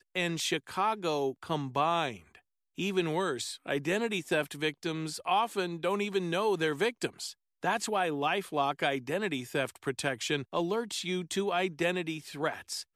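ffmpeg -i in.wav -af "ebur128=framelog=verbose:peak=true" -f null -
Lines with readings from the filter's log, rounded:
Integrated loudness:
  I:         -31.7 LUFS
  Threshold: -41.8 LUFS
Loudness range:
  LRA:         1.4 LU
  Threshold: -51.8 LUFS
  LRA low:   -32.5 LUFS
  LRA high:  -31.0 LUFS
True peak:
  Peak:      -15.2 dBFS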